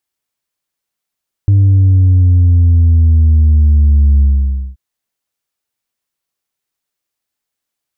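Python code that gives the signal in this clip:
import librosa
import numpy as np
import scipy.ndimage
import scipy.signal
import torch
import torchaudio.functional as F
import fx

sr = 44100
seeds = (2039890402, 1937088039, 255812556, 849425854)

y = fx.sub_drop(sr, level_db=-5.5, start_hz=100.0, length_s=3.28, drive_db=2, fade_s=0.55, end_hz=65.0)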